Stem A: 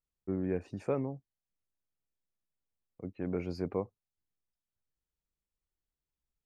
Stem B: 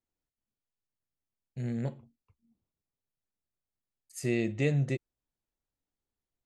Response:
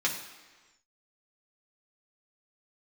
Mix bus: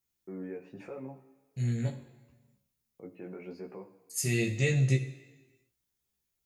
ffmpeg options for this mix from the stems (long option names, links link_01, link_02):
-filter_complex "[0:a]highpass=330,highshelf=frequency=3800:width_type=q:width=1.5:gain=-6,alimiter=level_in=12.5dB:limit=-24dB:level=0:latency=1:release=278,volume=-12.5dB,volume=-0.5dB,asplit=2[link_01][link_02];[link_02]volume=-8.5dB[link_03];[1:a]crystalizer=i=6.5:c=0,volume=-8dB,asplit=2[link_04][link_05];[link_05]volume=-5.5dB[link_06];[2:a]atrim=start_sample=2205[link_07];[link_03][link_06]amix=inputs=2:normalize=0[link_08];[link_08][link_07]afir=irnorm=-1:irlink=0[link_09];[link_01][link_04][link_09]amix=inputs=3:normalize=0,equalizer=frequency=79:width=0.42:gain=13.5,flanger=delay=15.5:depth=2.3:speed=0.82"